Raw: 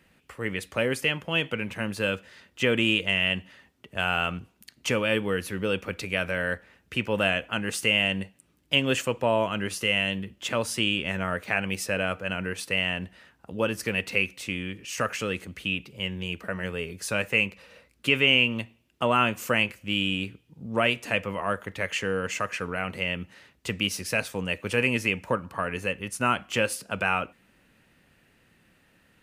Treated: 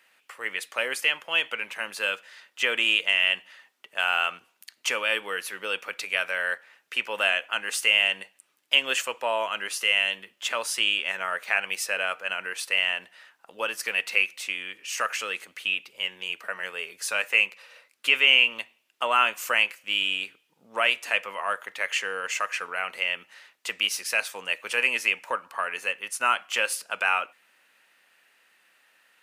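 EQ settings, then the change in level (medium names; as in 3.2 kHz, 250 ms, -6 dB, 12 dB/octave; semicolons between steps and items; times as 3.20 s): high-pass 850 Hz 12 dB/octave; +3.0 dB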